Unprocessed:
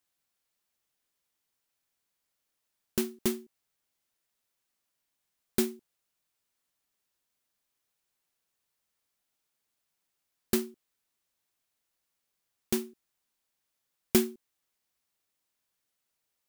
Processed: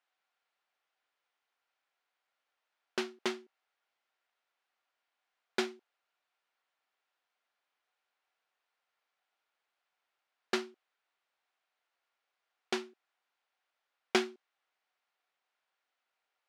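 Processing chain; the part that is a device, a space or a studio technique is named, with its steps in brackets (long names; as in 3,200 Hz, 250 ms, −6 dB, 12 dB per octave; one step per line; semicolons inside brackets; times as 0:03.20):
tin-can telephone (band-pass filter 600–2,700 Hz; hollow resonant body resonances 750/1,400 Hz, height 6 dB)
dynamic equaliser 5,000 Hz, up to +5 dB, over −59 dBFS, Q 1
level +5 dB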